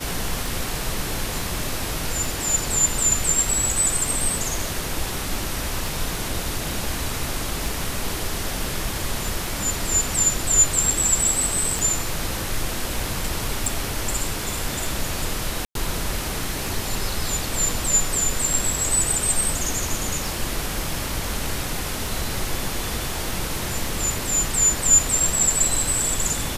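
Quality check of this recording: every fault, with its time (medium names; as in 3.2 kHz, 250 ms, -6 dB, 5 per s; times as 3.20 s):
tick 33 1/3 rpm
11.79 s: pop
13.66 s: pop
15.65–15.75 s: dropout 102 ms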